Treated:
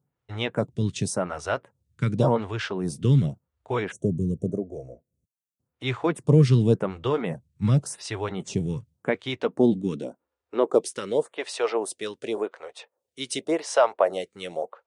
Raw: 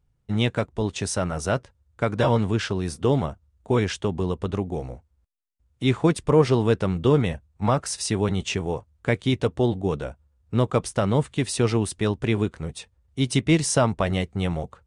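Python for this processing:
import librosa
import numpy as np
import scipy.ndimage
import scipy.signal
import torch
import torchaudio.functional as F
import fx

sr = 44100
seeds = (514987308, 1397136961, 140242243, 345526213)

y = fx.spec_box(x, sr, start_s=3.92, length_s=1.66, low_hz=710.0, high_hz=5600.0, gain_db=-22)
y = fx.filter_sweep_highpass(y, sr, from_hz=130.0, to_hz=540.0, start_s=8.84, end_s=11.37, q=2.2)
y = fx.stagger_phaser(y, sr, hz=0.89)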